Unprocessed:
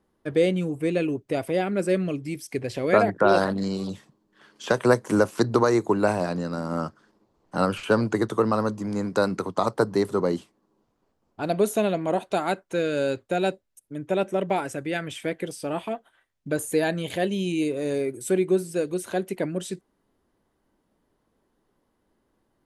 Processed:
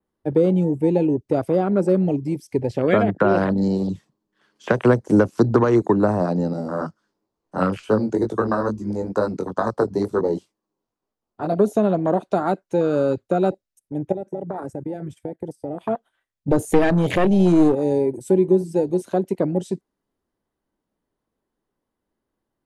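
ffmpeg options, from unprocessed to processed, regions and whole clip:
-filter_complex "[0:a]asettb=1/sr,asplit=3[s0][s1][s2];[s0]atrim=end=6.534[s3];[s1]atrim=start=6.53:end=11.59,asetpts=PTS-STARTPTS,afade=t=in:d=0.004:c=qsin,afade=t=out:st=5.056:d=0.004:c=qsin,bass=f=250:g=-3,treble=f=4000:g=3,flanger=delay=18:depth=4:speed=2.2[s4];[s2]atrim=start=11.586[s5];[s3][s4]acrossfade=d=0.004:c1=hsin:c2=qsin[s6];[s6][s5]acrossfade=d=0.004:c1=qsin:c2=hsin,asettb=1/sr,asplit=3[s7][s8][s9];[s7]atrim=end=14.124[s10];[s8]atrim=start=14.12:end=15.81,asetpts=PTS-STARTPTS,afade=t=in:d=0.004:c=qsin,afade=t=out:st=1.686:d=0.004:c=qsin,agate=range=0.251:threshold=0.0126:ratio=16:release=100:detection=peak,equalizer=f=2800:t=o:w=1.3:g=-11.5,acompressor=threshold=0.0282:ratio=12:attack=3.2:release=140:knee=1:detection=peak[s11];[s9]atrim=start=15.806[s12];[s10][s11]acrossfade=d=0.004:c1=hsin:c2=qsin[s13];[s13][s12]acrossfade=d=0.004:c1=qsin:c2=hsin,asettb=1/sr,asplit=3[s14][s15][s16];[s14]atrim=end=16.484[s17];[s15]atrim=start=16.48:end=17.75,asetpts=PTS-STARTPTS,afade=t=in:d=0.004:c=qsin,afade=t=out:st=1.266:d=0.004:c=qsin,aeval=exprs='clip(val(0),-1,0.0376)':c=same,acontrast=73[s18];[s16]atrim=start=17.746[s19];[s17][s18]acrossfade=d=0.004:c1=hsin:c2=qsin[s20];[s20][s19]acrossfade=d=0.004:c1=qsin:c2=hsin,afwtdn=0.0316,adynamicequalizer=threshold=0.00251:dfrequency=5500:dqfactor=1.1:tfrequency=5500:tqfactor=1.1:attack=5:release=100:ratio=0.375:range=3.5:mode=boostabove:tftype=bell,acrossover=split=320[s21][s22];[s22]acompressor=threshold=0.0501:ratio=4[s23];[s21][s23]amix=inputs=2:normalize=0,volume=2.37"

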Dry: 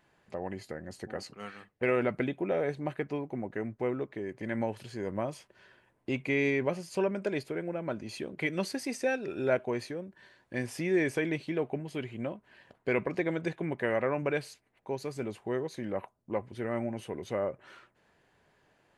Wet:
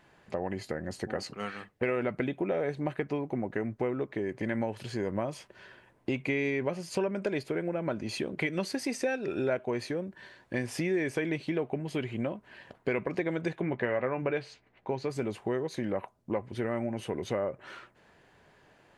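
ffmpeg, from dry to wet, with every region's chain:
-filter_complex "[0:a]asettb=1/sr,asplit=3[s0][s1][s2];[s0]atrim=end=13.614[s3];[s1]atrim=start=13.61:end=15.1,asetpts=PTS-STARTPTS,afade=t=in:d=0.004:c=qsin,afade=t=out:st=1.486:d=0.004:c=qsin,lowpass=4300,asplit=2[s4][s5];[s5]adelay=16,volume=0.299[s6];[s4][s6]amix=inputs=2:normalize=0,atrim=end_sample=65709[s7];[s2]atrim=start=15.096[s8];[s3][s7]acrossfade=d=0.004:c1=hsin:c2=qsin[s9];[s9][s8]acrossfade=d=0.004:c1=qsin:c2=hsin,highshelf=f=10000:g=-6.5,acompressor=threshold=0.0158:ratio=3,volume=2.24"

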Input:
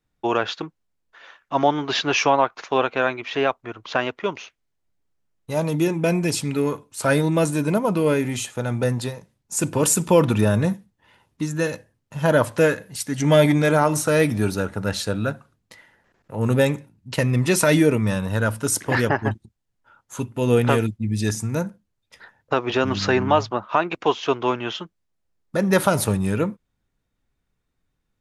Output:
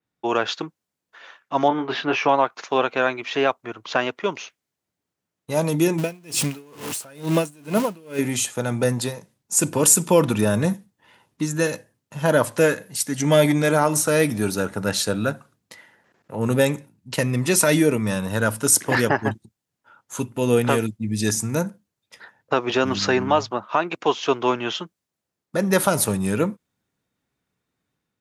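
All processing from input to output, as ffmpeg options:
-filter_complex "[0:a]asettb=1/sr,asplit=3[s0][s1][s2];[s0]atrim=end=1.684[s3];[s1]atrim=start=1.68:end=2.29,asetpts=PTS-STARTPTS,afade=t=in:d=0.004:c=qsin,afade=t=out:st=0.606:d=0.004:c=qsin,lowpass=2300,asplit=2[s4][s5];[s5]adelay=24,volume=0.398[s6];[s4][s6]amix=inputs=2:normalize=0,atrim=end_sample=26901[s7];[s2]atrim=start=2.286[s8];[s3][s7]acrossfade=d=0.004:c1=hsin:c2=qsin[s9];[s9][s8]acrossfade=d=0.004:c1=qsin:c2=hsin,asettb=1/sr,asplit=3[s10][s11][s12];[s10]atrim=end=5.984[s13];[s11]atrim=start=5.98:end=8.19,asetpts=PTS-STARTPTS,afade=t=in:d=0.004:c=qsin,afade=t=out:st=2.206:d=0.004:c=qsin,aeval=exprs='val(0)+0.5*0.0531*sgn(val(0))':c=same,equalizer=f=2800:w=4.1:g=5,aeval=exprs='val(0)*pow(10,-31*(0.5-0.5*cos(2*PI*2.2*n/s))/20)':c=same[s14];[s12]atrim=start=8.186[s15];[s13][s14]acrossfade=d=0.004:c1=hsin:c2=qsin[s16];[s16][s15]acrossfade=d=0.004:c1=qsin:c2=hsin,highpass=130,dynaudnorm=f=120:g=5:m=1.78,adynamicequalizer=threshold=0.0112:dfrequency=5000:dqfactor=0.7:tfrequency=5000:tqfactor=0.7:attack=5:release=100:ratio=0.375:range=3:mode=boostabove:tftype=highshelf,volume=0.708"

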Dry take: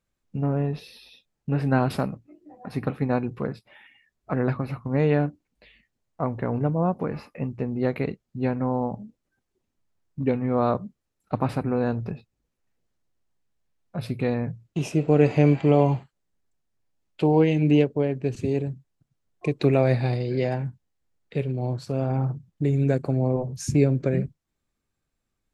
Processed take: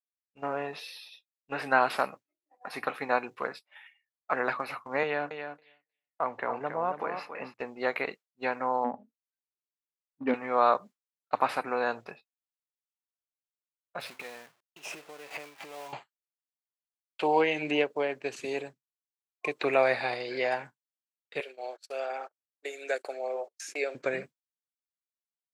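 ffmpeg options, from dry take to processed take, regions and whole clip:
-filter_complex "[0:a]asettb=1/sr,asplit=3[s0][s1][s2];[s0]atrim=end=5.034[s3];[s1]atrim=start=5.03:end=7.54,asetpts=PTS-STARTPTS,afade=t=in:d=0.004:c=qsin,afade=t=out:st=2.506:d=0.004:c=qsin,highshelf=f=5800:g=-12,acrossover=split=170|3000[s4][s5][s6];[s5]acompressor=threshold=0.0631:ratio=2.5:attack=3.2:release=140:knee=2.83:detection=peak[s7];[s4][s7][s6]amix=inputs=3:normalize=0,aecho=1:1:276|552|828:0.398|0.0756|0.0144,atrim=end_sample=110691[s8];[s2]atrim=start=7.536[s9];[s3][s8]acrossfade=d=0.004:c1=hsin:c2=qsin[s10];[s10][s9]acrossfade=d=0.004:c1=qsin:c2=hsin,asettb=1/sr,asplit=3[s11][s12][s13];[s11]atrim=end=8.844[s14];[s12]atrim=start=8.84:end=10.34,asetpts=PTS-STARTPTS,afade=t=in:d=0.004:c=qsin,afade=t=out:st=1.496:d=0.004:c=qsin,equalizer=f=250:t=o:w=0.22:g=14.5,adynamicsmooth=sensitivity=0.5:basefreq=1900[s15];[s13]atrim=start=10.336[s16];[s14][s15]acrossfade=d=0.004:c1=hsin:c2=qsin[s17];[s17][s16]acrossfade=d=0.004:c1=qsin:c2=hsin,asettb=1/sr,asplit=3[s18][s19][s20];[s18]atrim=end=14.004[s21];[s19]atrim=start=14:end=15.93,asetpts=PTS-STARTPTS,afade=t=in:d=0.004:c=qsin,afade=t=out:st=1.926:d=0.004:c=qsin,bandreject=f=65.36:t=h:w=4,bandreject=f=130.72:t=h:w=4,bandreject=f=196.08:t=h:w=4,bandreject=f=261.44:t=h:w=4,acompressor=threshold=0.0251:ratio=16:attack=3.2:release=140:knee=1:detection=peak,aeval=exprs='val(0)*gte(abs(val(0)),0.00501)':c=same[s22];[s20]atrim=start=15.926[s23];[s21][s22]acrossfade=d=0.004:c1=hsin:c2=qsin[s24];[s24][s23]acrossfade=d=0.004:c1=qsin:c2=hsin,asettb=1/sr,asplit=3[s25][s26][s27];[s25]atrim=end=21.404[s28];[s26]atrim=start=21.4:end=23.95,asetpts=PTS-STARTPTS,afade=t=in:d=0.004:c=qsin,afade=t=out:st=2.546:d=0.004:c=qsin,highpass=f=420:w=0.5412,highpass=f=420:w=1.3066,equalizer=f=1000:t=o:w=0.5:g=-12.5,agate=range=0.0355:threshold=0.00631:ratio=16:release=100:detection=peak[s29];[s27]atrim=start=23.946[s30];[s28][s29]acrossfade=d=0.004:c1=hsin:c2=qsin[s31];[s31][s30]acrossfade=d=0.004:c1=qsin:c2=hsin,highpass=910,agate=range=0.0224:threshold=0.00562:ratio=3:detection=peak,acrossover=split=2800[s32][s33];[s33]acompressor=threshold=0.00355:ratio=4:attack=1:release=60[s34];[s32][s34]amix=inputs=2:normalize=0,volume=2.24"

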